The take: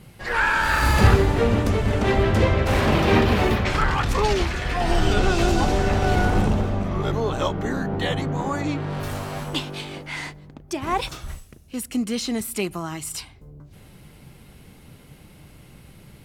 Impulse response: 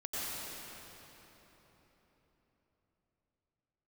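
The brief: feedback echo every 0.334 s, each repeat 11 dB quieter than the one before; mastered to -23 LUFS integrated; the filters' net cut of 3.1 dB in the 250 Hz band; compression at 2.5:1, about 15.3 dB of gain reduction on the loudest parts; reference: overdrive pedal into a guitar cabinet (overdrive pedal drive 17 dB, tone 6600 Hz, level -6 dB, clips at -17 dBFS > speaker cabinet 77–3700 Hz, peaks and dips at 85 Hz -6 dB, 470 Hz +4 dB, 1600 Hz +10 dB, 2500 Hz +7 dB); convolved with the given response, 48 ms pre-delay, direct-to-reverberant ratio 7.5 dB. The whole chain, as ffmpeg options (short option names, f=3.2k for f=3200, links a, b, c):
-filter_complex "[0:a]equalizer=f=250:t=o:g=-4.5,acompressor=threshold=-34dB:ratio=2.5,aecho=1:1:334|668|1002:0.282|0.0789|0.0221,asplit=2[a][b];[1:a]atrim=start_sample=2205,adelay=48[c];[b][c]afir=irnorm=-1:irlink=0,volume=-12dB[d];[a][d]amix=inputs=2:normalize=0,asplit=2[e][f];[f]highpass=f=720:p=1,volume=17dB,asoftclip=type=tanh:threshold=-17dB[g];[e][g]amix=inputs=2:normalize=0,lowpass=f=6.6k:p=1,volume=-6dB,highpass=77,equalizer=f=85:t=q:w=4:g=-6,equalizer=f=470:t=q:w=4:g=4,equalizer=f=1.6k:t=q:w=4:g=10,equalizer=f=2.5k:t=q:w=4:g=7,lowpass=f=3.7k:w=0.5412,lowpass=f=3.7k:w=1.3066"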